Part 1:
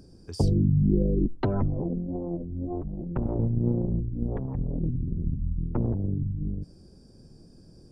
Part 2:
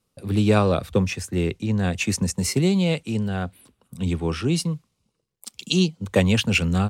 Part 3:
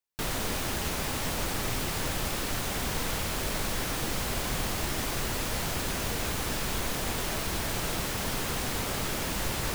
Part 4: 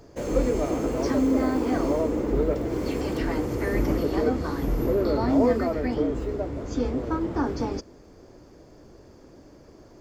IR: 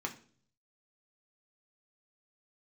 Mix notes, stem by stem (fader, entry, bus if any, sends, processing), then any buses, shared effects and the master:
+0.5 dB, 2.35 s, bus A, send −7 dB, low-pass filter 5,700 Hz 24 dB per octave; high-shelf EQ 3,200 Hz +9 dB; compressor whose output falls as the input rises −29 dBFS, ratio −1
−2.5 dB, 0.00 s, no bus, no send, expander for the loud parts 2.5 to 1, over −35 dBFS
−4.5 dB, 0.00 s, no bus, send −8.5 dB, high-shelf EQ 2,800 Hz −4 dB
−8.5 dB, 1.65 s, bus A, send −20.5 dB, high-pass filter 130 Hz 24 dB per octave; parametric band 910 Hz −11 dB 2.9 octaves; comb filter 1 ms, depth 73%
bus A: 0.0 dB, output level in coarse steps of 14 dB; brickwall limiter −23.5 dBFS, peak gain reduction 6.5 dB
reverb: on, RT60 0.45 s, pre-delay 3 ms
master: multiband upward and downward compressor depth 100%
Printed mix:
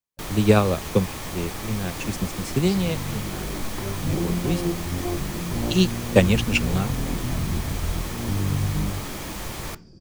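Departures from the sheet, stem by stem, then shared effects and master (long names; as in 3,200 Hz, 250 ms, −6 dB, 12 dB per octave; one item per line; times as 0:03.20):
stem 2 −2.5 dB → +4.5 dB
stem 3: missing high-shelf EQ 2,800 Hz −4 dB
master: missing multiband upward and downward compressor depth 100%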